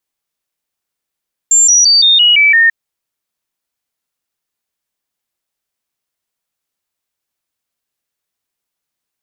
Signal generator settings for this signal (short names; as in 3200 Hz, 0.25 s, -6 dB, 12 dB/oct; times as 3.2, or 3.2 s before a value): stepped sine 7320 Hz down, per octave 3, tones 7, 0.17 s, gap 0.00 s -5 dBFS